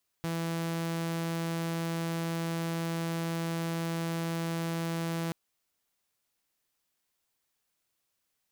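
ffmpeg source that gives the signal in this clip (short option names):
-f lavfi -i "aevalsrc='0.0398*(2*mod(166*t,1)-1)':d=5.08:s=44100"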